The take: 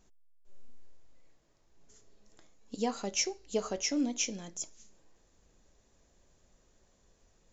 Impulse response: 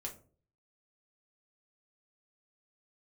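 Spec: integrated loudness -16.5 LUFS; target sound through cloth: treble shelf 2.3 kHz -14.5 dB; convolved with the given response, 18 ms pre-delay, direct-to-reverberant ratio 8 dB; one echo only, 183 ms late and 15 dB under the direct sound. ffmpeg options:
-filter_complex "[0:a]aecho=1:1:183:0.178,asplit=2[s0][s1];[1:a]atrim=start_sample=2205,adelay=18[s2];[s1][s2]afir=irnorm=-1:irlink=0,volume=0.501[s3];[s0][s3]amix=inputs=2:normalize=0,highshelf=f=2300:g=-14.5,volume=10"

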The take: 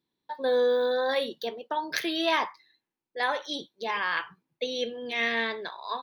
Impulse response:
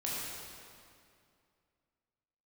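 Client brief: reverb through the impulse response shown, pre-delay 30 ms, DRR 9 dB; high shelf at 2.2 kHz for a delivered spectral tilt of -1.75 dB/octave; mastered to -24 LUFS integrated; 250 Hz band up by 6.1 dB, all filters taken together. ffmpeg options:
-filter_complex "[0:a]equalizer=f=250:t=o:g=7.5,highshelf=f=2200:g=8.5,asplit=2[s0][s1];[1:a]atrim=start_sample=2205,adelay=30[s2];[s1][s2]afir=irnorm=-1:irlink=0,volume=0.211[s3];[s0][s3]amix=inputs=2:normalize=0,volume=1.06"

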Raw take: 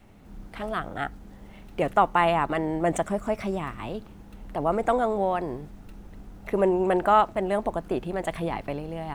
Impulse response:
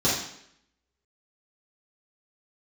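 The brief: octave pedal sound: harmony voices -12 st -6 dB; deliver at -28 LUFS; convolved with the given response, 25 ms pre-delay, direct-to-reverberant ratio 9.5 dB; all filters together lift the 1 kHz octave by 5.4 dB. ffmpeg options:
-filter_complex "[0:a]equalizer=f=1000:t=o:g=7,asplit=2[s0][s1];[1:a]atrim=start_sample=2205,adelay=25[s2];[s1][s2]afir=irnorm=-1:irlink=0,volume=0.0668[s3];[s0][s3]amix=inputs=2:normalize=0,asplit=2[s4][s5];[s5]asetrate=22050,aresample=44100,atempo=2,volume=0.501[s6];[s4][s6]amix=inputs=2:normalize=0,volume=0.447"

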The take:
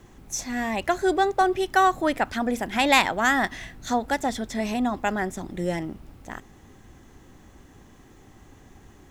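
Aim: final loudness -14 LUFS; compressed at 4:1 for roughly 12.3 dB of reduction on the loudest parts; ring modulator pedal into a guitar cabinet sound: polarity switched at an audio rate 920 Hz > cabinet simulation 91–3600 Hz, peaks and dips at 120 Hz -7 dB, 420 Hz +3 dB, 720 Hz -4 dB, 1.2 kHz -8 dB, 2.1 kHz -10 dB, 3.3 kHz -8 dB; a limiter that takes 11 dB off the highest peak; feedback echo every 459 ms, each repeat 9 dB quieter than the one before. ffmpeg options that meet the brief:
-af "acompressor=threshold=0.0355:ratio=4,alimiter=level_in=1.41:limit=0.0631:level=0:latency=1,volume=0.708,aecho=1:1:459|918|1377|1836:0.355|0.124|0.0435|0.0152,aeval=exprs='val(0)*sgn(sin(2*PI*920*n/s))':c=same,highpass=91,equalizer=f=120:t=q:w=4:g=-7,equalizer=f=420:t=q:w=4:g=3,equalizer=f=720:t=q:w=4:g=-4,equalizer=f=1200:t=q:w=4:g=-8,equalizer=f=2100:t=q:w=4:g=-10,equalizer=f=3300:t=q:w=4:g=-8,lowpass=f=3600:w=0.5412,lowpass=f=3600:w=1.3066,volume=21.1"

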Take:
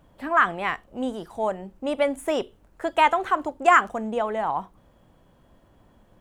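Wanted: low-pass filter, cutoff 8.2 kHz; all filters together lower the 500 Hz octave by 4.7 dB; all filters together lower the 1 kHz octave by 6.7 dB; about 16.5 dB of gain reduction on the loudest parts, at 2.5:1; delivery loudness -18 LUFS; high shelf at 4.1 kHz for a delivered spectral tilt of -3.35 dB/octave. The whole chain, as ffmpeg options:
-af "lowpass=8200,equalizer=f=500:t=o:g=-3,equalizer=f=1000:t=o:g=-7.5,highshelf=f=4100:g=-5,acompressor=threshold=0.00794:ratio=2.5,volume=14.1"

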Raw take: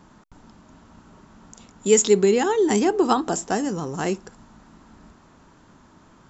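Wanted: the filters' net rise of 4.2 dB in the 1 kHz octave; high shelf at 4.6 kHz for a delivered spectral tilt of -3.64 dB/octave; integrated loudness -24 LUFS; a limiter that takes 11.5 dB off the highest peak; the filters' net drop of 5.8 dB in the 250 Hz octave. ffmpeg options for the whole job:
-af "equalizer=f=250:t=o:g=-9,equalizer=f=1000:t=o:g=6.5,highshelf=f=4600:g=-4.5,volume=1.12,alimiter=limit=0.224:level=0:latency=1"

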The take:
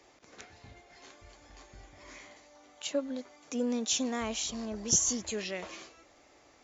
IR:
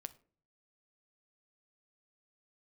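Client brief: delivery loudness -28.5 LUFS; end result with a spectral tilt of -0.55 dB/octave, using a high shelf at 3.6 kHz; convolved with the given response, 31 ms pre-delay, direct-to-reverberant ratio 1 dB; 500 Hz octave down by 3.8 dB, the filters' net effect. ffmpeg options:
-filter_complex "[0:a]equalizer=f=500:t=o:g=-4.5,highshelf=f=3600:g=8.5,asplit=2[s0][s1];[1:a]atrim=start_sample=2205,adelay=31[s2];[s1][s2]afir=irnorm=-1:irlink=0,volume=1.5[s3];[s0][s3]amix=inputs=2:normalize=0,volume=0.596"

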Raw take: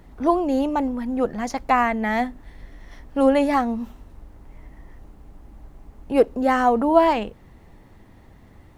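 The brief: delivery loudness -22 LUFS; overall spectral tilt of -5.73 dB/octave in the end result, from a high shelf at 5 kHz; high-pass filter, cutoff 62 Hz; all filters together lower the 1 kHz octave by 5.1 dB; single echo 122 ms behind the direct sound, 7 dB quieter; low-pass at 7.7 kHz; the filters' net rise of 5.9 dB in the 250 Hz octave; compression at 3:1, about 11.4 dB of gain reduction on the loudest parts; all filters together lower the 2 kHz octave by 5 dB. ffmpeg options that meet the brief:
-af "highpass=62,lowpass=7700,equalizer=f=250:t=o:g=7,equalizer=f=1000:t=o:g=-7,equalizer=f=2000:t=o:g=-4.5,highshelf=f=5000:g=4.5,acompressor=threshold=0.0562:ratio=3,aecho=1:1:122:0.447,volume=1.58"

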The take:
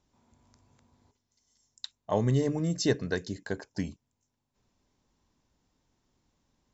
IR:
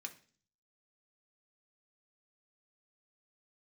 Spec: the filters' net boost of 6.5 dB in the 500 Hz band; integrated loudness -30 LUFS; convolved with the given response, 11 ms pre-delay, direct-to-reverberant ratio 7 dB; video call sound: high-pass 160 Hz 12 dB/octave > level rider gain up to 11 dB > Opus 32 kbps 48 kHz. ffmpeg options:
-filter_complex "[0:a]equalizer=f=500:t=o:g=8,asplit=2[s0][s1];[1:a]atrim=start_sample=2205,adelay=11[s2];[s1][s2]afir=irnorm=-1:irlink=0,volume=0.631[s3];[s0][s3]amix=inputs=2:normalize=0,highpass=160,dynaudnorm=m=3.55,volume=0.708" -ar 48000 -c:a libopus -b:a 32k

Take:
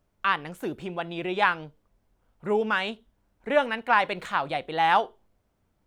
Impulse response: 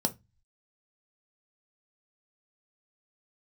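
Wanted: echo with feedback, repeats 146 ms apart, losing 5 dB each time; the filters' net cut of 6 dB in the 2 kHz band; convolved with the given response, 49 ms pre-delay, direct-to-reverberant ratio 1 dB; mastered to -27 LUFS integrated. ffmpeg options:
-filter_complex "[0:a]equalizer=f=2000:t=o:g=-8.5,aecho=1:1:146|292|438|584|730|876|1022:0.562|0.315|0.176|0.0988|0.0553|0.031|0.0173,asplit=2[s0][s1];[1:a]atrim=start_sample=2205,adelay=49[s2];[s1][s2]afir=irnorm=-1:irlink=0,volume=0.447[s3];[s0][s3]amix=inputs=2:normalize=0,volume=0.596"

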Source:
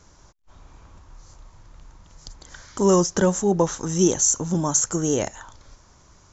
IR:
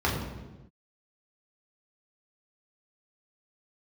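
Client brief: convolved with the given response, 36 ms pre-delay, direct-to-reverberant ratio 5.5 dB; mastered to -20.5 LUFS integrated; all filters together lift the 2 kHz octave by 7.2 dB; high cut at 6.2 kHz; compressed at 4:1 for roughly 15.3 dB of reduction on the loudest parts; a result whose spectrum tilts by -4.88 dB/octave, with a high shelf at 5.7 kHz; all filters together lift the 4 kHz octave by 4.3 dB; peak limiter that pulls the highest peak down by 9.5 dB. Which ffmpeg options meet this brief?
-filter_complex "[0:a]lowpass=6200,equalizer=f=2000:t=o:g=9,equalizer=f=4000:t=o:g=8,highshelf=f=5700:g=-3.5,acompressor=threshold=0.0251:ratio=4,alimiter=level_in=1.26:limit=0.0631:level=0:latency=1,volume=0.794,asplit=2[s0][s1];[1:a]atrim=start_sample=2205,adelay=36[s2];[s1][s2]afir=irnorm=-1:irlink=0,volume=0.119[s3];[s0][s3]amix=inputs=2:normalize=0,volume=5.31"

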